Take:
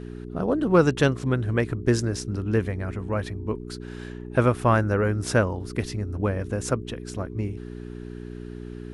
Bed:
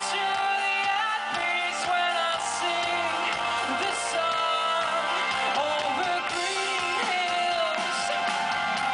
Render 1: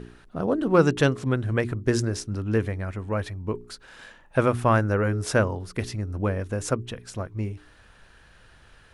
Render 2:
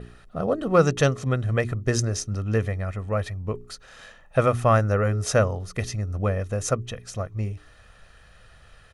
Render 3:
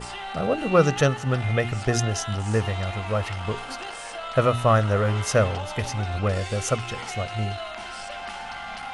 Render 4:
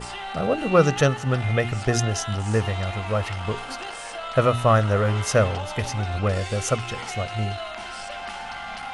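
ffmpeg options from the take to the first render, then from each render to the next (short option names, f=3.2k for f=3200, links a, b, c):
-af "bandreject=f=60:t=h:w=4,bandreject=f=120:t=h:w=4,bandreject=f=180:t=h:w=4,bandreject=f=240:t=h:w=4,bandreject=f=300:t=h:w=4,bandreject=f=360:t=h:w=4,bandreject=f=420:t=h:w=4"
-af "adynamicequalizer=threshold=0.00141:dfrequency=6200:dqfactor=6.2:tfrequency=6200:tqfactor=6.2:attack=5:release=100:ratio=0.375:range=4:mode=boostabove:tftype=bell,aecho=1:1:1.6:0.5"
-filter_complex "[1:a]volume=-8.5dB[a];[0:a][a]amix=inputs=2:normalize=0"
-af "volume=1dB"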